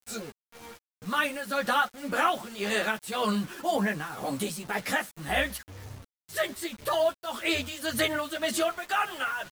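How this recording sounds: tremolo triangle 1.9 Hz, depth 80%; a quantiser's noise floor 8-bit, dither none; a shimmering, thickened sound

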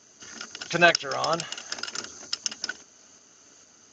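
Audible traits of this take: tremolo saw up 2.2 Hz, depth 35%; Speex

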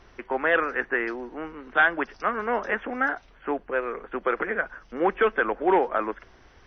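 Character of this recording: noise floor -55 dBFS; spectral tilt -2.0 dB/octave

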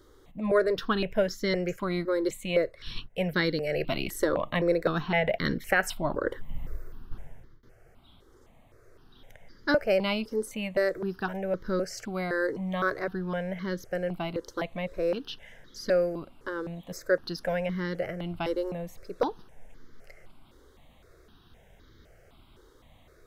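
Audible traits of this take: notches that jump at a steady rate 3.9 Hz 680–2600 Hz

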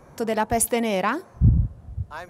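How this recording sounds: noise floor -50 dBFS; spectral tilt -5.5 dB/octave

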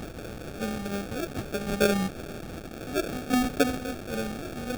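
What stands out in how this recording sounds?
chopped level 0.6 Hz, depth 65%, duty 25%; a quantiser's noise floor 8-bit, dither triangular; phasing stages 2, 3.4 Hz, lowest notch 450–1300 Hz; aliases and images of a low sample rate 1 kHz, jitter 0%

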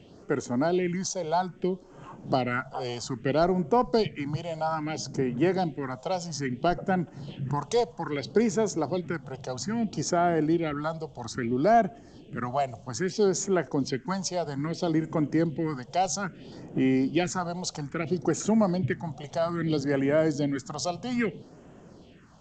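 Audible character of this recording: phasing stages 4, 0.61 Hz, lowest notch 280–4400 Hz; G.722

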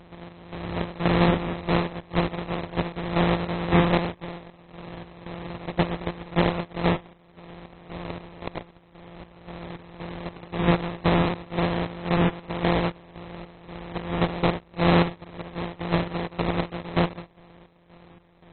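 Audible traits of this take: a buzz of ramps at a fixed pitch in blocks of 256 samples; chopped level 1.9 Hz, depth 65%, duty 55%; aliases and images of a low sample rate 1.5 kHz, jitter 20%; AAC

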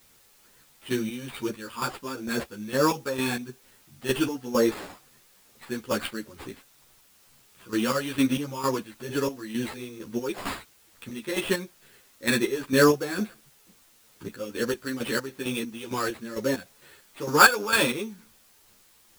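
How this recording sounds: aliases and images of a low sample rate 6 kHz, jitter 0%; chopped level 2.2 Hz, depth 65%, duty 40%; a quantiser's noise floor 10-bit, dither triangular; a shimmering, thickened sound

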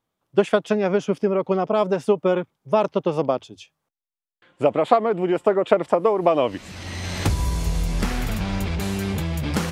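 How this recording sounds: noise floor -91 dBFS; spectral tilt -5.5 dB/octave

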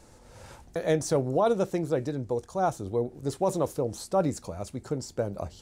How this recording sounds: noise floor -54 dBFS; spectral tilt -6.0 dB/octave

